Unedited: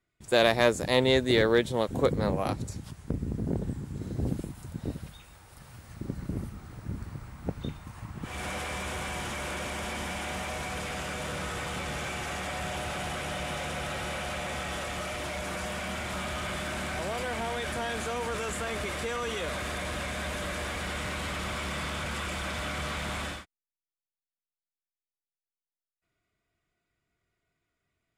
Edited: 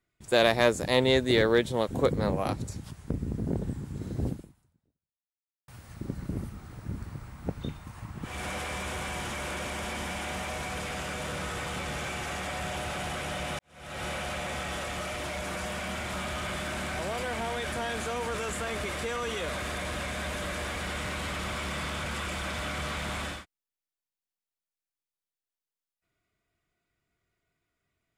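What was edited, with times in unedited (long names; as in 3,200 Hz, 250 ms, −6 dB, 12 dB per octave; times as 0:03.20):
0:04.27–0:05.68: fade out exponential
0:13.59–0:14.04: fade in quadratic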